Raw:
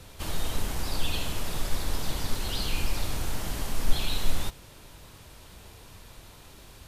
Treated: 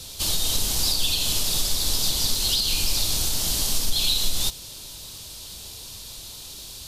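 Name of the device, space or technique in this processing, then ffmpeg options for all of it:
over-bright horn tweeter: -af "highshelf=f=2.8k:t=q:w=1.5:g=13,alimiter=limit=-13.5dB:level=0:latency=1:release=173,volume=2dB"

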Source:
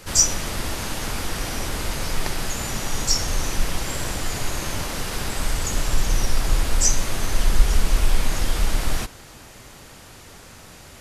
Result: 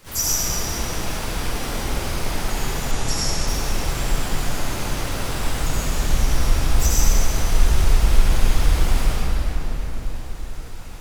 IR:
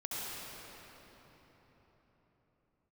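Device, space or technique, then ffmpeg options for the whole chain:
shimmer-style reverb: -filter_complex "[0:a]asplit=2[a][b];[b]asetrate=88200,aresample=44100,atempo=0.5,volume=-7dB[c];[a][c]amix=inputs=2:normalize=0[d];[1:a]atrim=start_sample=2205[e];[d][e]afir=irnorm=-1:irlink=0,asplit=3[f][g][h];[f]afade=t=out:st=2.91:d=0.02[i];[g]lowpass=f=11k:w=0.5412,lowpass=f=11k:w=1.3066,afade=t=in:st=2.91:d=0.02,afade=t=out:st=3.46:d=0.02[j];[h]afade=t=in:st=3.46:d=0.02[k];[i][j][k]amix=inputs=3:normalize=0,volume=-3dB"

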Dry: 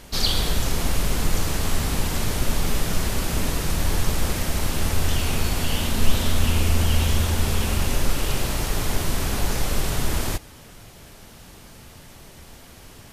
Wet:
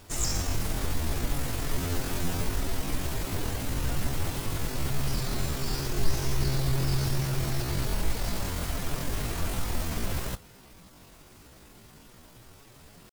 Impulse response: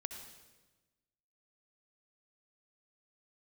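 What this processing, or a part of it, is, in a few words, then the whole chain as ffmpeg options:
chipmunk voice: -filter_complex "[0:a]asettb=1/sr,asplit=3[a][b][c];[a]atrim=end=1.704[d];[b]atrim=start=1.7:end=2.46,asetpts=PTS-STARTPTS,afade=t=in:d=0.004:c=qsin,afade=t=out:st=0.756:d=0.004:c=qsin,asplit=2[e][f];[f]adelay=19,volume=-5dB[g];[e][g]amix=inputs=2:normalize=0,atrim=end_sample=33516[h];[c]atrim=start=2.456[i];[d][h]acrossfade=d=0.004:c1=hsin:c2=qsin[j];[j][i]acrossfade=d=0.004:c1=qsin:c2=hsin,asetrate=72056,aresample=44100,atempo=0.612027,volume=-7dB"

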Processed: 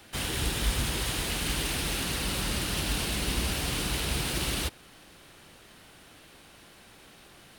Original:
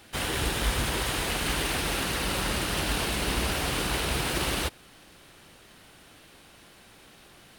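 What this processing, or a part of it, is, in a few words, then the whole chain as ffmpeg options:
one-band saturation: -filter_complex "[0:a]acrossover=split=310|2500[a][b][c];[b]asoftclip=type=tanh:threshold=-37.5dB[d];[a][d][c]amix=inputs=3:normalize=0"

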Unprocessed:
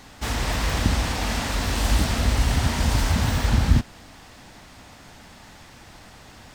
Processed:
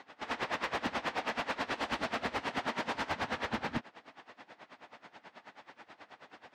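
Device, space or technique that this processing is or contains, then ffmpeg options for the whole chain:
helicopter radio: -filter_complex "[0:a]asettb=1/sr,asplit=3[a][b][c];[a]atrim=end=2.414[d];[b]atrim=start=2.41:end=2.95,asetpts=PTS-STARTPTS,afade=t=in:d=0.004:c=qsin,afade=t=out:st=0.536:d=0.004:c=qsin,highpass=120[e];[c]atrim=start=2.946[f];[d][e]acrossfade=d=0.004:c1=hsin:c2=qsin[g];[g][f]acrossfade=d=0.004:c1=qsin:c2=hsin,highpass=370,lowpass=2.6k,aeval=exprs='val(0)*pow(10,-20*(0.5-0.5*cos(2*PI*9.3*n/s))/20)':c=same,asoftclip=type=hard:threshold=-27.5dB,volume=1dB"

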